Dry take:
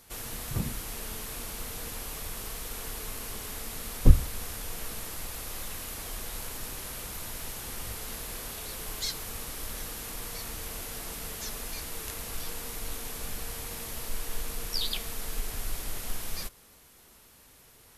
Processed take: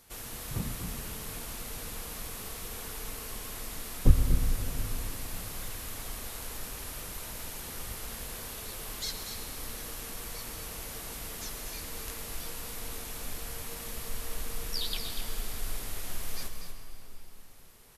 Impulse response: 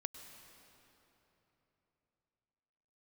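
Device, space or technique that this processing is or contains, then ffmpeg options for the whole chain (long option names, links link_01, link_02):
cave: -filter_complex "[0:a]aecho=1:1:241:0.376[link_01];[1:a]atrim=start_sample=2205[link_02];[link_01][link_02]afir=irnorm=-1:irlink=0"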